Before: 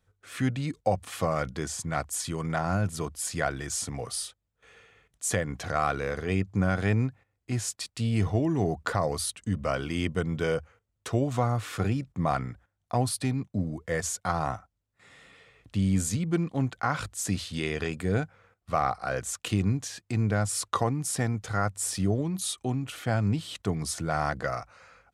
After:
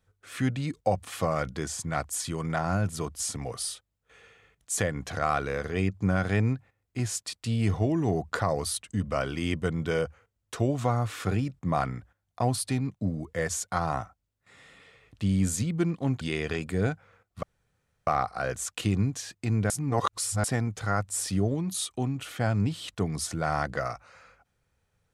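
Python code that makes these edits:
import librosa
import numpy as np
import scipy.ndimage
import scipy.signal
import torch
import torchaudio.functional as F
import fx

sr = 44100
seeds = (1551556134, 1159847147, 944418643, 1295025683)

y = fx.edit(x, sr, fx.cut(start_s=3.2, length_s=0.53),
    fx.cut(start_s=16.74, length_s=0.78),
    fx.insert_room_tone(at_s=18.74, length_s=0.64),
    fx.reverse_span(start_s=20.37, length_s=0.74), tone=tone)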